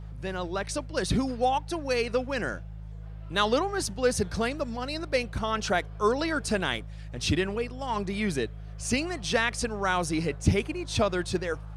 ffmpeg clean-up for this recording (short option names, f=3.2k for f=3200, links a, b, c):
-af "bandreject=f=52.9:t=h:w=4,bandreject=f=105.8:t=h:w=4,bandreject=f=158.7:t=h:w=4"